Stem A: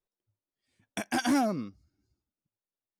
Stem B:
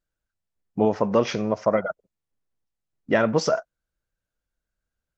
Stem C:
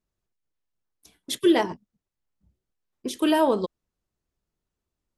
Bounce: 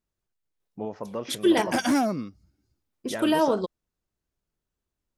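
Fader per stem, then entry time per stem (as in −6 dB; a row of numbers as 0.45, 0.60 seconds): +3.0, −13.0, −1.5 decibels; 0.60, 0.00, 0.00 seconds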